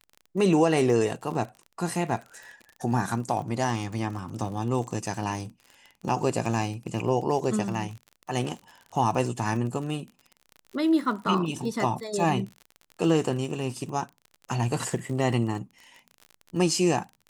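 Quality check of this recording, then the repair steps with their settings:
crackle 40/s -35 dBFS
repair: de-click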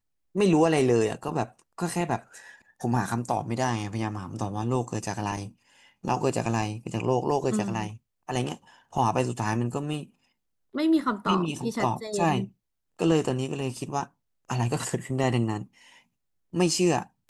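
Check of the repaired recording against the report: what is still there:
none

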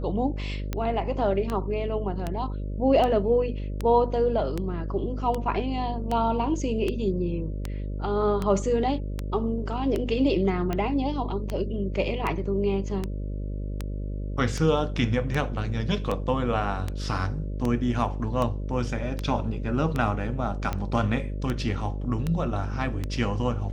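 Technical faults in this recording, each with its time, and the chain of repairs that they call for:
buzz 50 Hz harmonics 12 -31 dBFS
tick 78 rpm -15 dBFS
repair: de-click; de-hum 50 Hz, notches 12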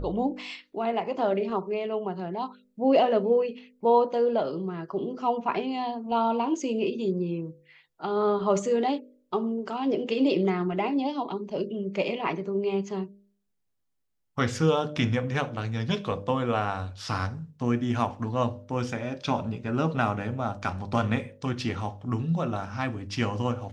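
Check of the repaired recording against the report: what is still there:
none

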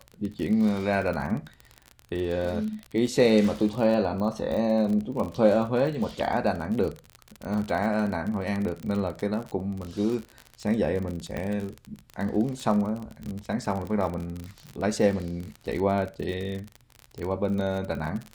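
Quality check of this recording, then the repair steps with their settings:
crackle 39/s -30 dBFS
11.37 pop -19 dBFS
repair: de-click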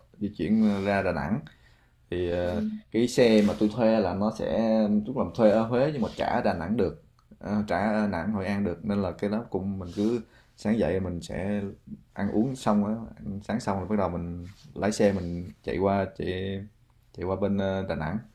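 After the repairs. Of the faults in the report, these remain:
none

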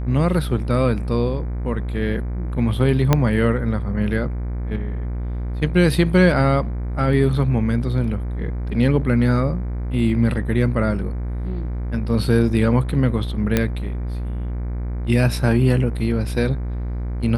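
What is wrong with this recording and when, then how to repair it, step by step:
buzz 60 Hz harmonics 40 -25 dBFS
3.13 pop -2 dBFS
13.57 pop -4 dBFS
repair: de-click; de-hum 60 Hz, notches 40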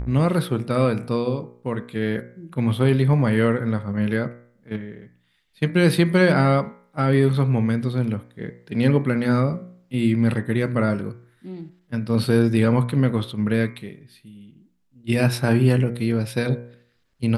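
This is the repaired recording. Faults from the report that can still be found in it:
3.13 pop

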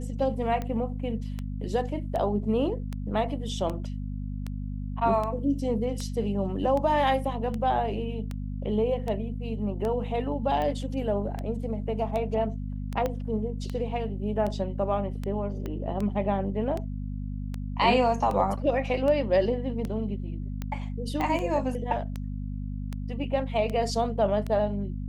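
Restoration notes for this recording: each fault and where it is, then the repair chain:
hum 50 Hz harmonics 5 -33 dBFS
tick 78 rpm -20 dBFS
13.06 pop -16 dBFS
15.66 pop -22 dBFS
21.21 pop -17 dBFS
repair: de-click; de-hum 50 Hz, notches 5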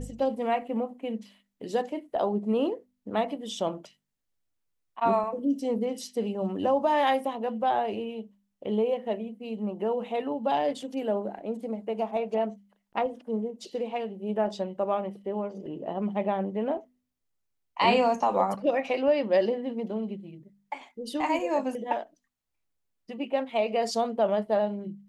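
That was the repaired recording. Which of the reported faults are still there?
13.06 pop
15.66 pop
21.21 pop

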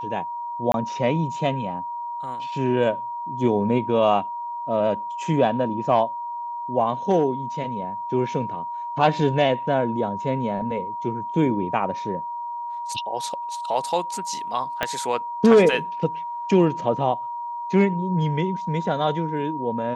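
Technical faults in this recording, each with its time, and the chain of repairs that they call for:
tone 950 Hz -28 dBFS
0.72–0.74 gap 22 ms
14.83 pop -8 dBFS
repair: de-click; notch 950 Hz, Q 30; interpolate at 0.72, 22 ms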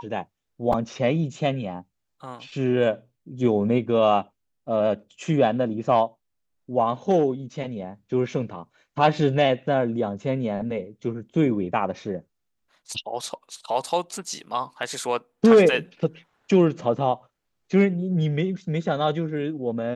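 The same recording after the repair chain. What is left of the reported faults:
14.83 pop

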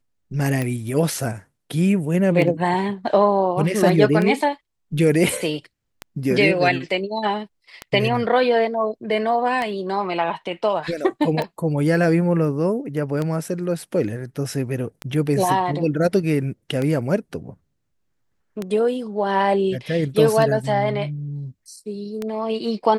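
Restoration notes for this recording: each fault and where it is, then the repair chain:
tick 33 1/3 rpm -12 dBFS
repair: de-click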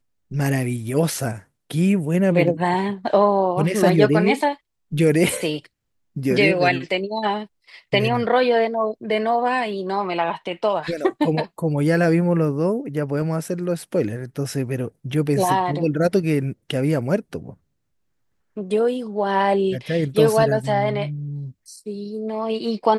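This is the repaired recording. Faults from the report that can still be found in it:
none

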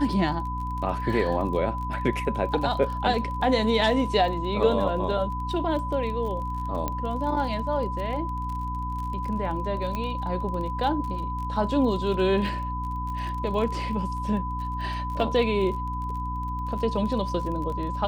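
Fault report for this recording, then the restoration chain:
crackle 32/s -33 dBFS
hum 60 Hz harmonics 5 -32 dBFS
tone 1000 Hz -31 dBFS
6.88 pop -14 dBFS
9.95 pop -17 dBFS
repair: de-click; de-hum 60 Hz, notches 5; notch 1000 Hz, Q 30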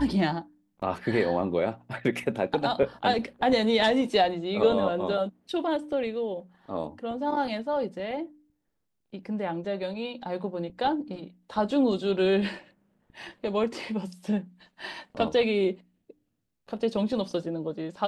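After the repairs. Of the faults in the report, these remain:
none

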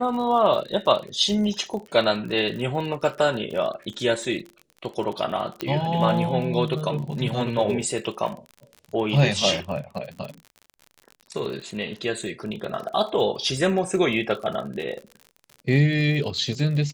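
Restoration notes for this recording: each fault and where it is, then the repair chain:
crackle 47/s -32 dBFS
5.61 pop -13 dBFS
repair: de-click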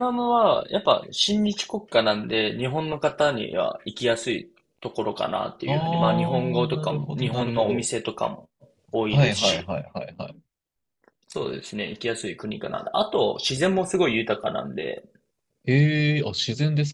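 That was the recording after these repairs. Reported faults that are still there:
none

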